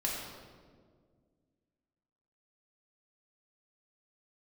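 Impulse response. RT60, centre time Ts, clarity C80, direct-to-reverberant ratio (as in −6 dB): 1.8 s, 85 ms, 2.0 dB, −4.5 dB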